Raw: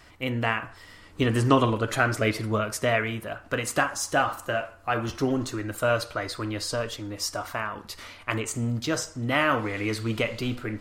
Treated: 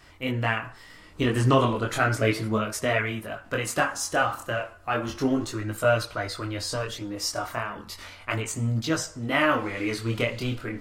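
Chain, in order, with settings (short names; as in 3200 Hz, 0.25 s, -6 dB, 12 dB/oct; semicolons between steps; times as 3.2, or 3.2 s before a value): chorus voices 2, 0.34 Hz, delay 22 ms, depth 4 ms; gain +3 dB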